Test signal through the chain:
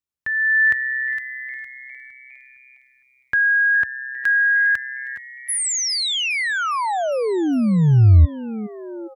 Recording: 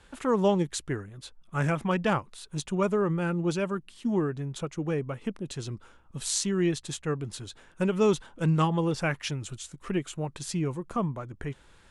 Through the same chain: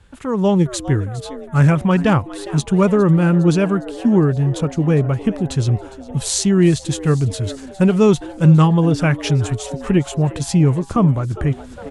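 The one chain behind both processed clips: peaking EQ 83 Hz +14 dB 2.1 oct; frequency-shifting echo 408 ms, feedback 58%, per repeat +130 Hz, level -18 dB; level rider gain up to 10 dB

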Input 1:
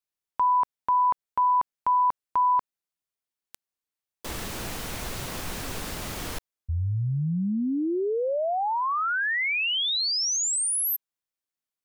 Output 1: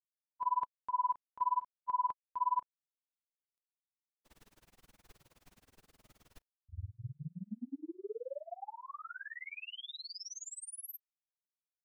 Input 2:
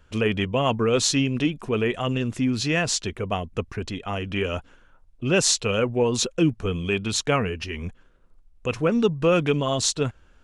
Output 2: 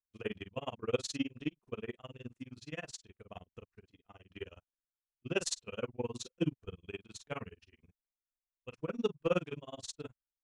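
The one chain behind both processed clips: doubling 33 ms -4 dB; tremolo 19 Hz, depth 93%; upward expansion 2.5:1, over -45 dBFS; trim -8.5 dB

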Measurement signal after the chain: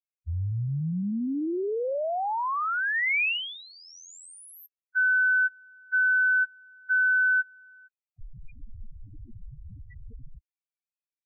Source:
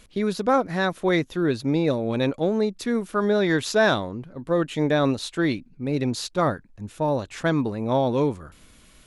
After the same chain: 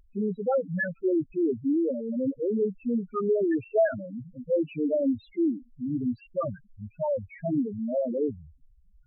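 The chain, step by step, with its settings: resonant high shelf 3.3 kHz -9 dB, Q 3; loudest bins only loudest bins 2

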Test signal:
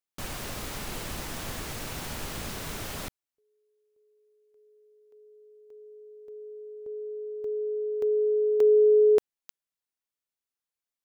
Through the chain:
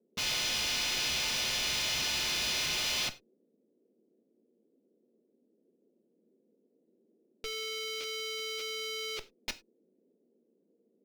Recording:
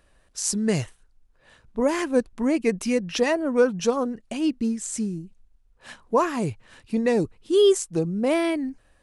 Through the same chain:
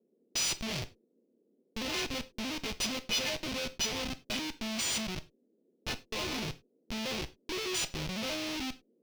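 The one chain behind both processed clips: partials quantised in pitch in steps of 3 st; compression 8:1, threshold -26 dBFS; Schmitt trigger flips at -30.5 dBFS; band noise 200–480 Hz -66 dBFS; high-order bell 3.7 kHz +11.5 dB; gated-style reverb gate 120 ms falling, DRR 11 dB; trim -6 dB

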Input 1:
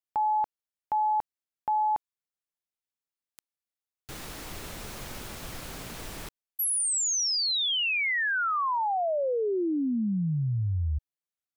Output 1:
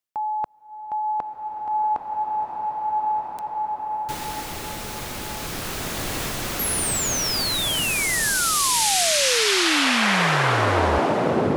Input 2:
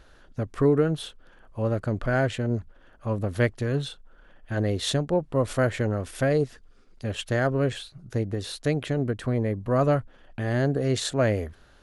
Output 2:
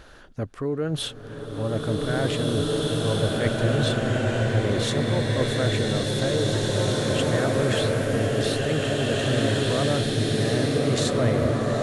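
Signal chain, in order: bass shelf 68 Hz -6.5 dB; reverse; compression 6:1, threshold -33 dBFS; reverse; swelling reverb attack 2110 ms, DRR -5.5 dB; trim +8 dB

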